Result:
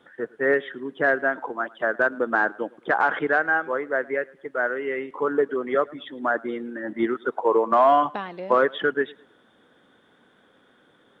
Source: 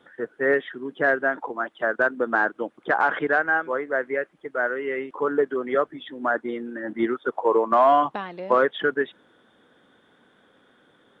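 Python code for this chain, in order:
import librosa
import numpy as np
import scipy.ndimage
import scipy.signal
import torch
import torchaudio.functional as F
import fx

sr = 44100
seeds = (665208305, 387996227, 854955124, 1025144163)

y = fx.echo_warbled(x, sr, ms=108, feedback_pct=32, rate_hz=2.8, cents=67, wet_db=-24.0)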